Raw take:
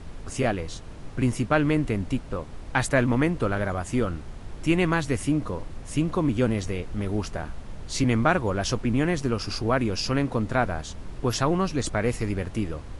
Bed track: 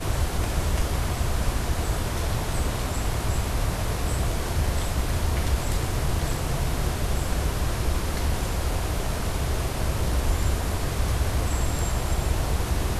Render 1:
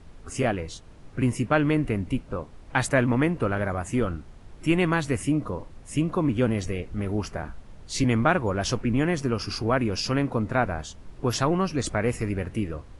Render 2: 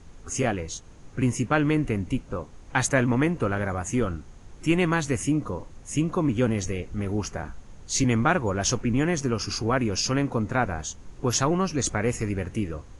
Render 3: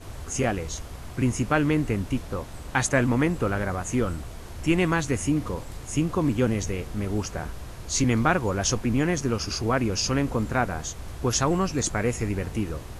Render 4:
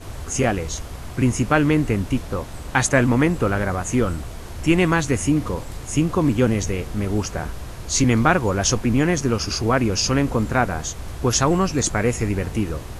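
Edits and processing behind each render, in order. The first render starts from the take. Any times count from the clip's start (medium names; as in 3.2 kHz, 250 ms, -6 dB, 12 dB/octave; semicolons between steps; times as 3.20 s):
noise print and reduce 8 dB
peaking EQ 6.5 kHz +12 dB 0.27 oct; band-stop 630 Hz, Q 14
add bed track -14 dB
trim +5 dB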